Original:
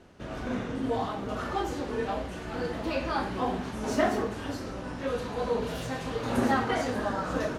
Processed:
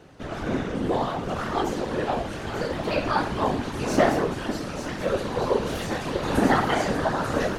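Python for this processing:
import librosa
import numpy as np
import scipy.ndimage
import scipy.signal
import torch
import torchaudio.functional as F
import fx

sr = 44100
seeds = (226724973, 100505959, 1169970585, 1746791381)

y = fx.echo_wet_highpass(x, sr, ms=889, feedback_pct=58, hz=2300.0, wet_db=-7)
y = fx.whisperise(y, sr, seeds[0])
y = y * 10.0 ** (5.0 / 20.0)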